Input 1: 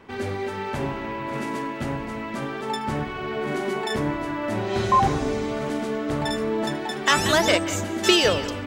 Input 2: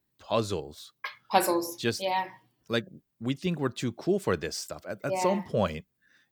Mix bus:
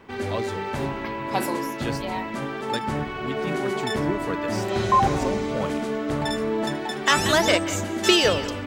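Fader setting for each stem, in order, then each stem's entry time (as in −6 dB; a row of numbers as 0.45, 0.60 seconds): 0.0, −3.5 decibels; 0.00, 0.00 seconds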